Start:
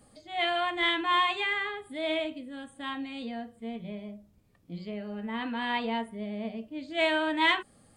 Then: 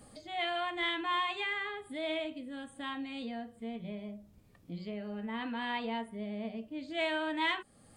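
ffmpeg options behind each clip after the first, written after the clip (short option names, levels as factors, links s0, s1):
-af "acompressor=threshold=0.00251:ratio=1.5,volume=1.5"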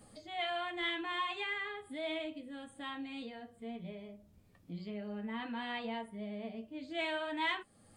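-af "flanger=delay=9.5:depth=2.4:regen=-42:speed=0.37:shape=sinusoidal,volume=1.12"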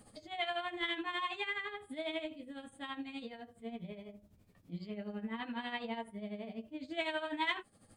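-af "tremolo=f=12:d=0.68,volume=1.33"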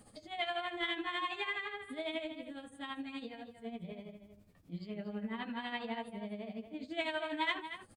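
-filter_complex "[0:a]asplit=2[s0][s1];[s1]adelay=233.2,volume=0.316,highshelf=f=4000:g=-5.25[s2];[s0][s2]amix=inputs=2:normalize=0"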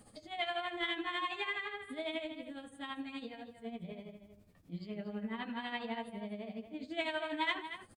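-filter_complex "[0:a]asplit=2[s0][s1];[s1]adelay=105,volume=0.0891,highshelf=f=4000:g=-2.36[s2];[s0][s2]amix=inputs=2:normalize=0"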